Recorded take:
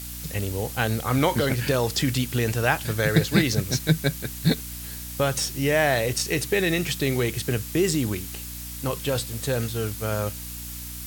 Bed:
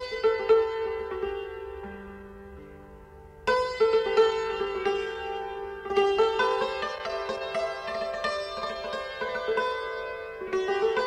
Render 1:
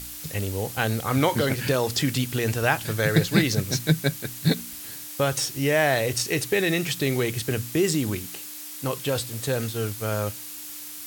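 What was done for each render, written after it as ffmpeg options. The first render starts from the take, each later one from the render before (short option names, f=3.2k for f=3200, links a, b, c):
-af "bandreject=f=60:t=h:w=4,bandreject=f=120:t=h:w=4,bandreject=f=180:t=h:w=4,bandreject=f=240:t=h:w=4"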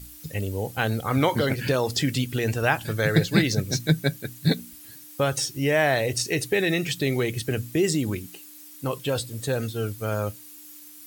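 -af "afftdn=nr=11:nf=-38"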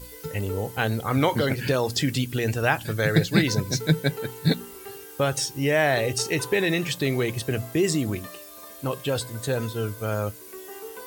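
-filter_complex "[1:a]volume=-14.5dB[a];[0:a][a]amix=inputs=2:normalize=0"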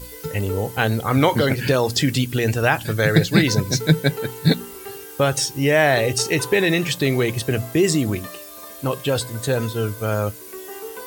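-af "volume=5dB,alimiter=limit=-3dB:level=0:latency=1"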